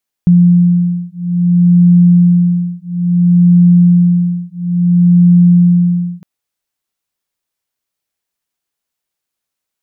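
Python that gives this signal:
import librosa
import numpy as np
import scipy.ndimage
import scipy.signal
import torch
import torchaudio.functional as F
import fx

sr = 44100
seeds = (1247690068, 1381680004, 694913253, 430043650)

y = fx.two_tone_beats(sr, length_s=5.96, hz=175.0, beat_hz=0.59, level_db=-9.0)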